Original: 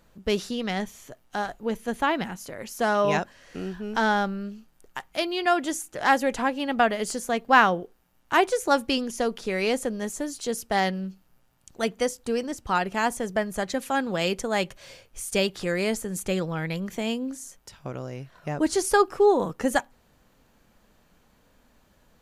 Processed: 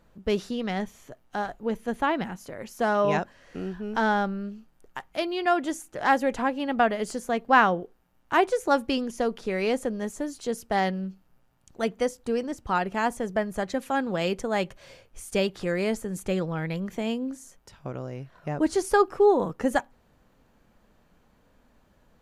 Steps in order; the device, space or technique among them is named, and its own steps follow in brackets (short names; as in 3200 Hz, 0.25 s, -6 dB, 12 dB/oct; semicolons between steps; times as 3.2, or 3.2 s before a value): behind a face mask (high shelf 2600 Hz -8 dB)